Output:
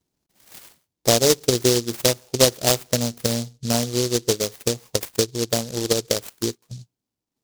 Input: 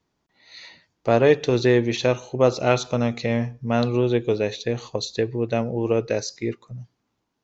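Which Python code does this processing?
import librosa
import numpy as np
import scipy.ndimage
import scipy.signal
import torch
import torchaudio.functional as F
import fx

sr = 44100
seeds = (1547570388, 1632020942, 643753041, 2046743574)

y = fx.transient(x, sr, attack_db=8, sustain_db=-7)
y = fx.noise_mod_delay(y, sr, seeds[0], noise_hz=5100.0, depth_ms=0.21)
y = F.gain(torch.from_numpy(y), -3.5).numpy()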